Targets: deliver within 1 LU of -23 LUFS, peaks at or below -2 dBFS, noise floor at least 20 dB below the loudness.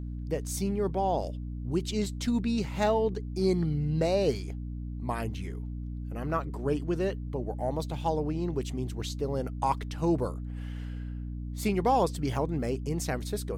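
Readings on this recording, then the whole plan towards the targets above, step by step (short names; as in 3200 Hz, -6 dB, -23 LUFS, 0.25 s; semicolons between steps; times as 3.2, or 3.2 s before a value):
hum 60 Hz; harmonics up to 300 Hz; hum level -34 dBFS; loudness -31.0 LUFS; peak -14.0 dBFS; loudness target -23.0 LUFS
-> notches 60/120/180/240/300 Hz; gain +8 dB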